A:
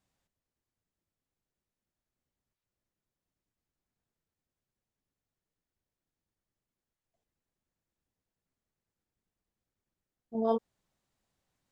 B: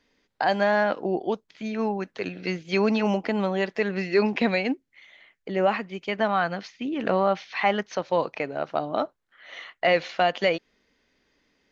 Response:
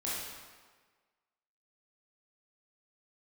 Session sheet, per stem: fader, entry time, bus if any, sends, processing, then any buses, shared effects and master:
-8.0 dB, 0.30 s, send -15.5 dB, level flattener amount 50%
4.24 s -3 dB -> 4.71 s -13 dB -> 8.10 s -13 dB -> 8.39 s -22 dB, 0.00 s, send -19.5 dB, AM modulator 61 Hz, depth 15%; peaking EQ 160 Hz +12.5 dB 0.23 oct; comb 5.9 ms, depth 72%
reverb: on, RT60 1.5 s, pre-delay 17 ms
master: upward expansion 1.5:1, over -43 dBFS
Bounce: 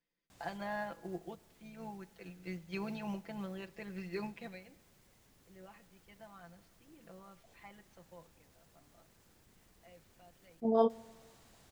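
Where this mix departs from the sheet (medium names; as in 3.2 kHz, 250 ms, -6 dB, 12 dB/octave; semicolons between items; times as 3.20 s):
stem A -8.0 dB -> -0.5 dB; stem B -3.0 dB -> -13.5 dB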